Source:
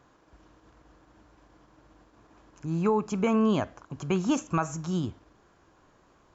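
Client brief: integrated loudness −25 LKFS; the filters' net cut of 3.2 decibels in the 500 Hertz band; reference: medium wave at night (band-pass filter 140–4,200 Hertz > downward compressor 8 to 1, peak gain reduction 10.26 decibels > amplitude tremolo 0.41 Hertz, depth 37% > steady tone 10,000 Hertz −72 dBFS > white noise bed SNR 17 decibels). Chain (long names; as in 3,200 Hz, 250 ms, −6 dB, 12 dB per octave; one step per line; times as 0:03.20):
band-pass filter 140–4,200 Hz
parametric band 500 Hz −4 dB
downward compressor 8 to 1, threshold −32 dBFS
amplitude tremolo 0.41 Hz, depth 37%
steady tone 10,000 Hz −72 dBFS
white noise bed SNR 17 dB
level +14 dB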